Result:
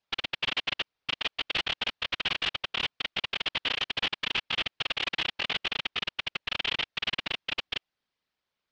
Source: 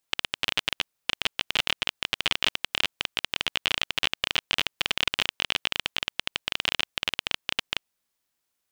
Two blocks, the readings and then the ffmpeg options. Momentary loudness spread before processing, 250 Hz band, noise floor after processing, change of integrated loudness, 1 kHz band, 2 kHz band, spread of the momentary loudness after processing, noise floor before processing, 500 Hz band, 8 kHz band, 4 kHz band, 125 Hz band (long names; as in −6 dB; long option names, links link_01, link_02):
5 LU, −2.0 dB, below −85 dBFS, −3.0 dB, −2.0 dB, −2.5 dB, 4 LU, −80 dBFS, −2.0 dB, −12.0 dB, −3.0 dB, −2.0 dB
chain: -af "afftfilt=real='hypot(re,im)*cos(2*PI*random(0))':imag='hypot(re,im)*sin(2*PI*random(1))':win_size=512:overlap=0.75,aeval=exprs='0.0501*(abs(mod(val(0)/0.0501+3,4)-2)-1)':channel_layout=same,lowpass=frequency=4600:width=0.5412,lowpass=frequency=4600:width=1.3066,volume=5.5dB"